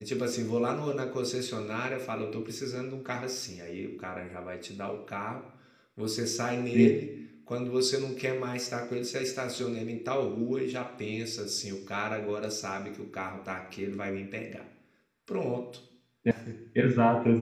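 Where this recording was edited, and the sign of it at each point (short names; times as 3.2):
16.31 sound cut off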